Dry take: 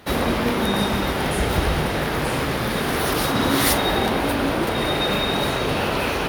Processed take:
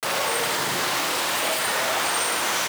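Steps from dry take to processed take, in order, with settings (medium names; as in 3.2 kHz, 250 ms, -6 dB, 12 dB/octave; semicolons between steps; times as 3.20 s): peak limiter -16 dBFS, peak gain reduction 9.5 dB; on a send at -15 dB: reverberation RT60 4.2 s, pre-delay 120 ms; on the sum: bit crusher 5-bit; speed mistake 33 rpm record played at 78 rpm; high-pass 590 Hz 6 dB/octave; delay 72 ms -5.5 dB; trim +1 dB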